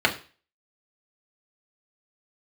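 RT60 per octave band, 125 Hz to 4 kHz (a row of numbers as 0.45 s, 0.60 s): 0.40 s, 0.35 s, 0.35 s, 0.35 s, 0.40 s, 0.40 s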